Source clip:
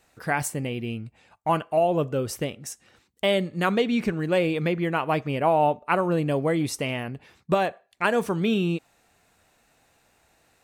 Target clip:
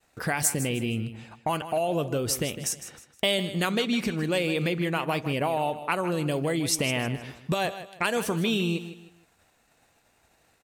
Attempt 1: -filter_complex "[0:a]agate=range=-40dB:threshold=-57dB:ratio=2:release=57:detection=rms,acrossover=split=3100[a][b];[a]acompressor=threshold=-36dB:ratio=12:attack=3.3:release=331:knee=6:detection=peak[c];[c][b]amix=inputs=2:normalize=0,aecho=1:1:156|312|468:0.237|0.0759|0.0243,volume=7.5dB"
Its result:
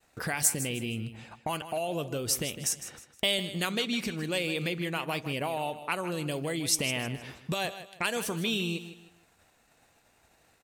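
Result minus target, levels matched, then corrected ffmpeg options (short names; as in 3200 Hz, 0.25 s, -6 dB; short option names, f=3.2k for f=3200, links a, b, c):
compressor: peak gain reduction +6 dB
-filter_complex "[0:a]agate=range=-40dB:threshold=-57dB:ratio=2:release=57:detection=rms,acrossover=split=3100[a][b];[a]acompressor=threshold=-29.5dB:ratio=12:attack=3.3:release=331:knee=6:detection=peak[c];[c][b]amix=inputs=2:normalize=0,aecho=1:1:156|312|468:0.237|0.0759|0.0243,volume=7.5dB"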